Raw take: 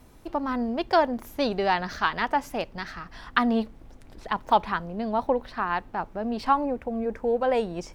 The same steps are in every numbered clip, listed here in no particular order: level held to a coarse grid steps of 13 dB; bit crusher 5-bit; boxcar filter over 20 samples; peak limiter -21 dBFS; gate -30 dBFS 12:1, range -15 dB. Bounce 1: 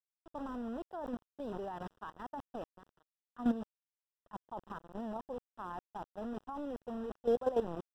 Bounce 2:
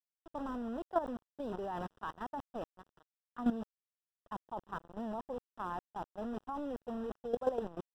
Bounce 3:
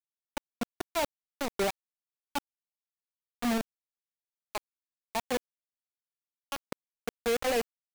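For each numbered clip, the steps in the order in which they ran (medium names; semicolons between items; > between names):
bit crusher > peak limiter > gate > level held to a coarse grid > boxcar filter; bit crusher > boxcar filter > peak limiter > gate > level held to a coarse grid; level held to a coarse grid > peak limiter > boxcar filter > gate > bit crusher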